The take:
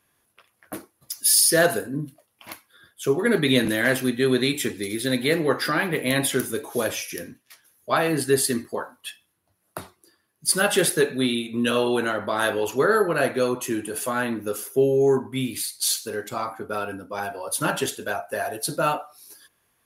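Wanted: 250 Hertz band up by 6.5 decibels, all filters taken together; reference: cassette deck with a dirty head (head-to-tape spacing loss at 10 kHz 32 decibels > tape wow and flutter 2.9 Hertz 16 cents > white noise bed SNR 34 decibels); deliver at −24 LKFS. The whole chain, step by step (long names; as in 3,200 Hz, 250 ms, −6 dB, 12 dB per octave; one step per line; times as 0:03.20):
head-to-tape spacing loss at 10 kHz 32 dB
parametric band 250 Hz +8.5 dB
tape wow and flutter 2.9 Hz 16 cents
white noise bed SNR 34 dB
level −2 dB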